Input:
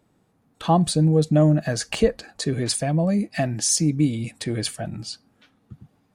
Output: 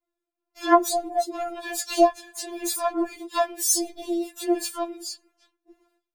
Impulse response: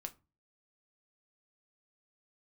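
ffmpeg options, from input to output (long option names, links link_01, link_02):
-filter_complex "[0:a]agate=range=-33dB:threshold=-52dB:ratio=3:detection=peak,asplit=3[link_01][link_02][link_03];[link_02]asetrate=66075,aresample=44100,atempo=0.66742,volume=-3dB[link_04];[link_03]asetrate=88200,aresample=44100,atempo=0.5,volume=-8dB[link_05];[link_01][link_04][link_05]amix=inputs=3:normalize=0,afftfilt=real='re*4*eq(mod(b,16),0)':imag='im*4*eq(mod(b,16),0)':win_size=2048:overlap=0.75,volume=-1.5dB"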